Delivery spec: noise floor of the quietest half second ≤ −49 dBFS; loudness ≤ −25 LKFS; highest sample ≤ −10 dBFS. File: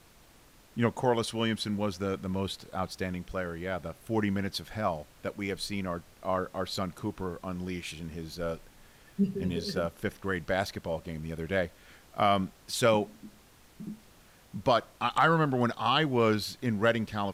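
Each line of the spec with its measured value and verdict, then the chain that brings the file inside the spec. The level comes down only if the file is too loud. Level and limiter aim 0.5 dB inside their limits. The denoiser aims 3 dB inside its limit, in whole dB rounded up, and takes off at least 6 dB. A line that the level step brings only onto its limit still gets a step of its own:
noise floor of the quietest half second −58 dBFS: in spec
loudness −31.0 LKFS: in spec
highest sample −13.0 dBFS: in spec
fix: no processing needed

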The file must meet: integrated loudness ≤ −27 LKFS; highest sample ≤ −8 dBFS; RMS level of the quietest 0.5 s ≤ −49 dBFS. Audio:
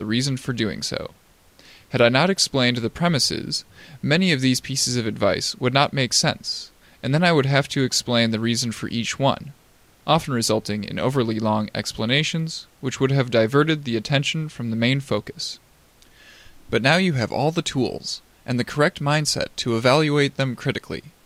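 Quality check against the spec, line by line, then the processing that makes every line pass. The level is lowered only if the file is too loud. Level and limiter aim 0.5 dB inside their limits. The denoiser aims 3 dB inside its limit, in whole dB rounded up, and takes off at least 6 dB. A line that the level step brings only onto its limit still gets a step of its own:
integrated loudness −21.5 LKFS: out of spec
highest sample −4.5 dBFS: out of spec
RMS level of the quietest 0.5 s −55 dBFS: in spec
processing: level −6 dB

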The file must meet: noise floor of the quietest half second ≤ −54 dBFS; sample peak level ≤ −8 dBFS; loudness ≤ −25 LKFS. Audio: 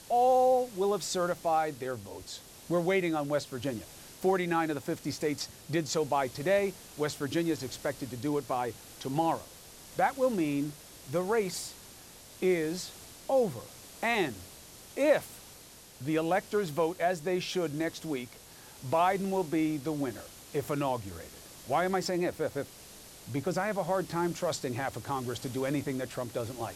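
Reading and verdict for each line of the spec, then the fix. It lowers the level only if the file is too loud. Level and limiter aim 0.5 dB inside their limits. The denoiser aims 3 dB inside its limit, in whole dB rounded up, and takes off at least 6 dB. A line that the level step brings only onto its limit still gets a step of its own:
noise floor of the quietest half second −52 dBFS: out of spec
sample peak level −13.5 dBFS: in spec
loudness −31.5 LKFS: in spec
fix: broadband denoise 6 dB, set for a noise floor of −52 dBFS

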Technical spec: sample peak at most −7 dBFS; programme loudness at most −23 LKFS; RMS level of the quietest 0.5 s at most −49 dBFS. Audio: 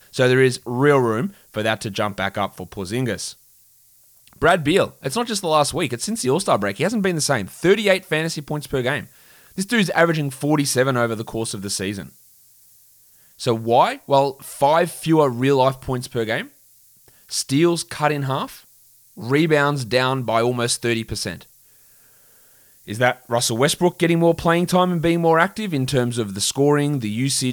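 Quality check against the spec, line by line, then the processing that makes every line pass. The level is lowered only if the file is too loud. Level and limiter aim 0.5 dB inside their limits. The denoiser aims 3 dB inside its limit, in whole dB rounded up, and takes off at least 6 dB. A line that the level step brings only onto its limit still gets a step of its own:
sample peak −3.5 dBFS: out of spec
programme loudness −20.0 LKFS: out of spec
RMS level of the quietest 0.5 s −54 dBFS: in spec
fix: level −3.5 dB
brickwall limiter −7.5 dBFS

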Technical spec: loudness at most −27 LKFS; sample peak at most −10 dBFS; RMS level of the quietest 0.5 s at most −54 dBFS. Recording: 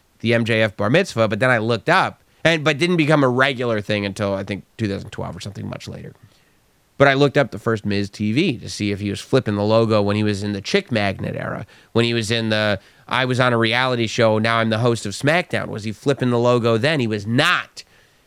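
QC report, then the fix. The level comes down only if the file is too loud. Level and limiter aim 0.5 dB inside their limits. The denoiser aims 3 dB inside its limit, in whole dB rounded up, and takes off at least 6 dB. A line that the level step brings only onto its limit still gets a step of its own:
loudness −19.0 LKFS: out of spec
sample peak −1.5 dBFS: out of spec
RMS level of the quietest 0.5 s −59 dBFS: in spec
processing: level −8.5 dB
brickwall limiter −10.5 dBFS

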